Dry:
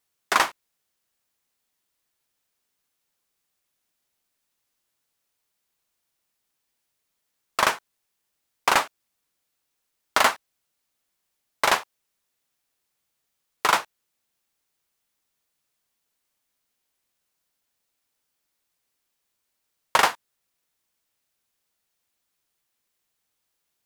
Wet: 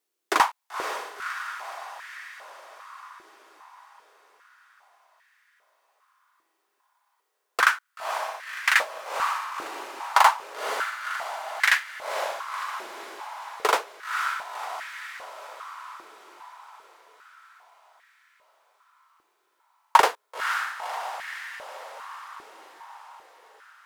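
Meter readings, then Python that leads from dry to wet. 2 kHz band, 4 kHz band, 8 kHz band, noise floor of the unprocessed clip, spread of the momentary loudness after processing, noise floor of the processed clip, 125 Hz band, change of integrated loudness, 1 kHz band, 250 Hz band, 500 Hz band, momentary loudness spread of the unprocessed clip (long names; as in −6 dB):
+3.0 dB, −1.5 dB, −2.5 dB, −78 dBFS, 22 LU, −75 dBFS, below −10 dB, −3.5 dB, +2.5 dB, −3.5 dB, +0.5 dB, 8 LU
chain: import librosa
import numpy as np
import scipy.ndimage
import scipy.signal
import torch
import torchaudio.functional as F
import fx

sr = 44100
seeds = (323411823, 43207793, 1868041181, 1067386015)

y = fx.echo_diffused(x, sr, ms=520, feedback_pct=63, wet_db=-7.0)
y = fx.filter_held_highpass(y, sr, hz=2.5, low_hz=350.0, high_hz=1800.0)
y = F.gain(torch.from_numpy(y), -4.0).numpy()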